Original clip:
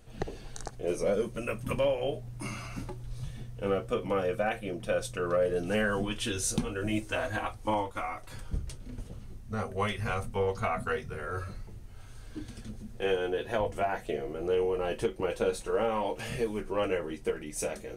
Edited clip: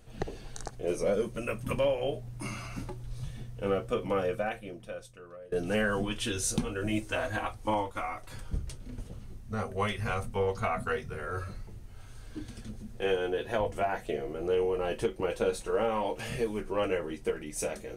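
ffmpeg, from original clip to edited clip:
-filter_complex "[0:a]asplit=2[s0][s1];[s0]atrim=end=5.52,asetpts=PTS-STARTPTS,afade=t=out:st=4.25:d=1.27:c=qua:silence=0.0841395[s2];[s1]atrim=start=5.52,asetpts=PTS-STARTPTS,afade=t=in:d=0.004:c=hsin:silence=0.0841395[s3];[s2][s3]concat=n=2:v=0:a=1"

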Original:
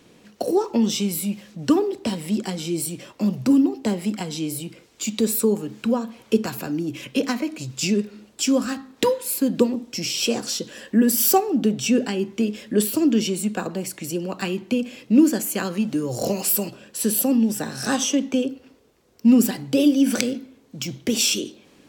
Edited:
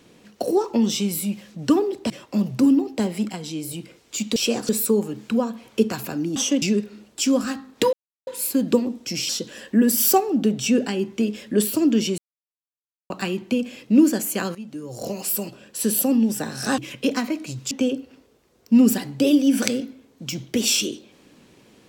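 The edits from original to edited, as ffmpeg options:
-filter_complex "[0:a]asplit=15[s0][s1][s2][s3][s4][s5][s6][s7][s8][s9][s10][s11][s12][s13][s14];[s0]atrim=end=2.102[s15];[s1]atrim=start=2.968:end=4.162[s16];[s2]atrim=start=4.158:end=4.582,asetpts=PTS-STARTPTS,volume=0.708[s17];[s3]atrim=start=4.578:end=5.232[s18];[s4]atrim=start=10.158:end=10.492[s19];[s5]atrim=start=5.228:end=6.902[s20];[s6]atrim=start=17.978:end=18.242[s21];[s7]atrim=start=7.828:end=9.14,asetpts=PTS-STARTPTS,afade=t=out:st=1.308:d=0.004:c=hsin,apad=pad_dur=0.34[s22];[s8]atrim=start=9.14:end=10.162,asetpts=PTS-STARTPTS,afade=t=in:d=0.004:c=hsin[s23];[s9]atrim=start=10.488:end=13.38,asetpts=PTS-STARTPTS,afade=t=out:st=2.888:d=0.004:c=hsin[s24];[s10]atrim=start=13.38:end=14.3,asetpts=PTS-STARTPTS,volume=0[s25];[s11]atrim=start=14.3:end=15.75,asetpts=PTS-STARTPTS,afade=t=in:d=0.004:c=hsin,afade=t=out:st=1.446:d=0.004:c=hsin:silence=0.177828[s26];[s12]atrim=start=15.75:end=17.982,asetpts=PTS-STARTPTS,afade=t=in:d=1.34:silence=0.177828[s27];[s13]atrim=start=6.898:end=7.832[s28];[s14]atrim=start=18.238[s29];[s15][s16]acrossfade=d=0.004:c1=hsin:c2=hsin[s30];[s30][s17]acrossfade=d=0.004:c1=hsin:c2=hsin[s31];[s31][s18]acrossfade=d=0.004:c1=hsin:c2=hsin[s32];[s32][s19]acrossfade=d=0.004:c1=hsin:c2=hsin[s33];[s33][s20]acrossfade=d=0.004:c1=hsin:c2=hsin[s34];[s34][s21]acrossfade=d=0.004:c1=hsin:c2=hsin[s35];[s22][s23]concat=n=2:v=0:a=1[s36];[s35][s36]acrossfade=d=0.004:c1=hsin:c2=hsin[s37];[s24][s25][s26][s27]concat=n=4:v=0:a=1[s38];[s37][s38]acrossfade=d=0.004:c1=hsin:c2=hsin[s39];[s39][s28]acrossfade=d=0.004:c1=hsin:c2=hsin[s40];[s40][s29]acrossfade=d=0.004:c1=hsin:c2=hsin"

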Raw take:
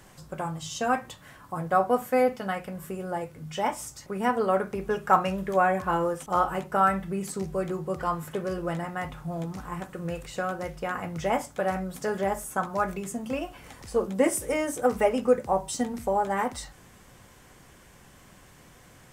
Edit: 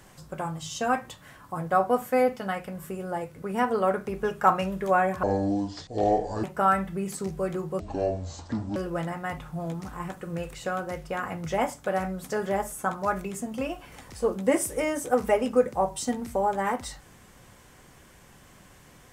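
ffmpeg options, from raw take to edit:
-filter_complex "[0:a]asplit=6[s0][s1][s2][s3][s4][s5];[s0]atrim=end=3.422[s6];[s1]atrim=start=4.078:end=5.894[s7];[s2]atrim=start=5.89:end=6.59,asetpts=PTS-STARTPTS,asetrate=25578,aresample=44100,atrim=end_sample=53224,asetpts=PTS-STARTPTS[s8];[s3]atrim=start=6.586:end=7.954[s9];[s4]atrim=start=7.95:end=8.48,asetpts=PTS-STARTPTS,asetrate=24255,aresample=44100,atrim=end_sample=42496,asetpts=PTS-STARTPTS[s10];[s5]atrim=start=8.476[s11];[s6][s7]acrossfade=d=0.004:c1=hsin:c2=hsin[s12];[s12][s8]acrossfade=d=0.004:c1=hsin:c2=hsin[s13];[s13][s9]acrossfade=d=0.004:c1=hsin:c2=hsin[s14];[s14][s10]acrossfade=d=0.004:c1=hsin:c2=hsin[s15];[s15][s11]acrossfade=d=0.004:c1=hsin:c2=hsin"

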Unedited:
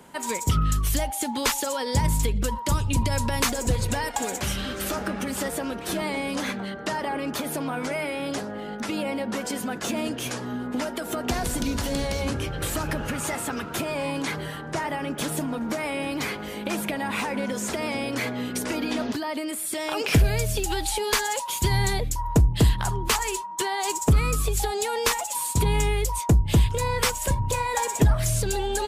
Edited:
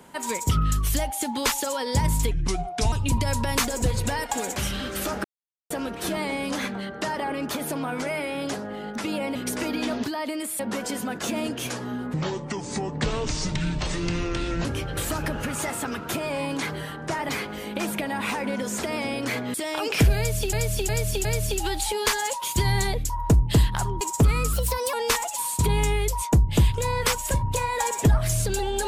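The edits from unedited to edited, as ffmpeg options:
-filter_complex "[0:a]asplit=17[s0][s1][s2][s3][s4][s5][s6][s7][s8][s9][s10][s11][s12][s13][s14][s15][s16];[s0]atrim=end=2.314[s17];[s1]atrim=start=2.31:end=2.77,asetpts=PTS-STARTPTS,asetrate=33075,aresample=44100[s18];[s2]atrim=start=2.766:end=5.09,asetpts=PTS-STARTPTS,afade=t=out:st=2.32:d=0.004:c=hsin[s19];[s3]atrim=start=5.09:end=5.55,asetpts=PTS-STARTPTS,volume=0[s20];[s4]atrim=start=5.55:end=9.202,asetpts=PTS-STARTPTS,afade=t=in:d=0.004:c=hsin[s21];[s5]atrim=start=18.438:end=19.682[s22];[s6]atrim=start=9.198:end=10.744[s23];[s7]atrim=start=10.74:end=12.3,asetpts=PTS-STARTPTS,asetrate=27342,aresample=44100,atrim=end_sample=110961,asetpts=PTS-STARTPTS[s24];[s8]atrim=start=12.296:end=14.942[s25];[s9]atrim=start=16.188:end=18.442[s26];[s10]atrim=start=19.678:end=20.672[s27];[s11]atrim=start=20.308:end=20.672[s28];[s12]atrim=start=20.308:end=20.672[s29];[s13]atrim=start=20.308:end=23.072[s30];[s14]atrim=start=23.888:end=24.414[s31];[s15]atrim=start=24.41:end=24.9,asetpts=PTS-STARTPTS,asetrate=53361,aresample=44100[s32];[s16]atrim=start=24.896[s33];[s17][s18]acrossfade=d=0.004:c1=hsin:c2=hsin[s34];[s19][s20][s21]concat=n=3:v=0:a=1[s35];[s34][s35]acrossfade=d=0.004:c1=hsin:c2=hsin[s36];[s36][s22]acrossfade=d=0.004:c1=hsin:c2=hsin[s37];[s37][s23]acrossfade=d=0.004:c1=hsin:c2=hsin[s38];[s38][s24]acrossfade=d=0.004:c1=hsin:c2=hsin[s39];[s39][s25]acrossfade=d=0.004:c1=hsin:c2=hsin[s40];[s40][s26]acrossfade=d=0.004:c1=hsin:c2=hsin[s41];[s41][s27]acrossfade=d=0.004:c1=hsin:c2=hsin[s42];[s42][s28]acrossfade=d=0.004:c1=hsin:c2=hsin[s43];[s43][s29]acrossfade=d=0.004:c1=hsin:c2=hsin[s44];[s44][s30]acrossfade=d=0.004:c1=hsin:c2=hsin[s45];[s45][s31]acrossfade=d=0.004:c1=hsin:c2=hsin[s46];[s46][s32]acrossfade=d=0.004:c1=hsin:c2=hsin[s47];[s47][s33]acrossfade=d=0.004:c1=hsin:c2=hsin"

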